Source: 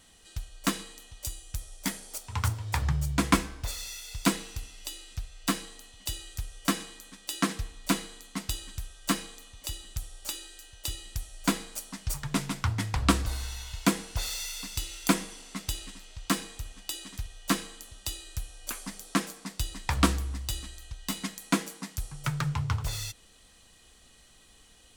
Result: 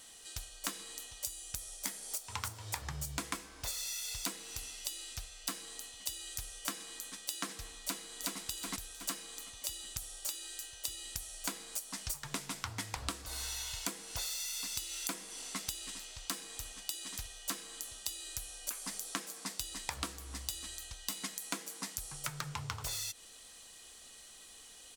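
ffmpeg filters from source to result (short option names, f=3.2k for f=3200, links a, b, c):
-filter_complex "[0:a]asplit=2[a][b];[b]afade=t=in:st=7.82:d=0.01,afade=t=out:st=8.39:d=0.01,aecho=0:1:370|740|1110|1480:0.944061|0.236015|0.0590038|0.014751[c];[a][c]amix=inputs=2:normalize=0,bass=f=250:g=-11,treble=f=4k:g=6,acompressor=threshold=-36dB:ratio=16,volume=1dB"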